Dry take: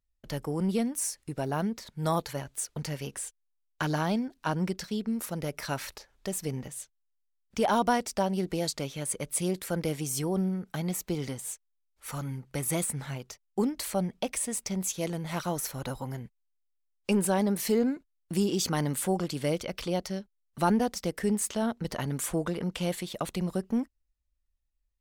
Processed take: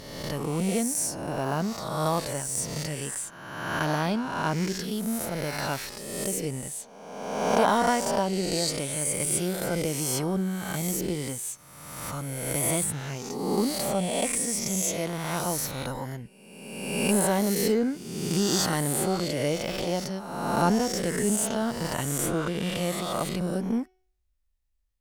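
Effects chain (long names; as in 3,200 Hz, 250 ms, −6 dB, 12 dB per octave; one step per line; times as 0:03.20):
peak hold with a rise ahead of every peak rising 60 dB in 1.37 s
hum removal 371.1 Hz, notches 18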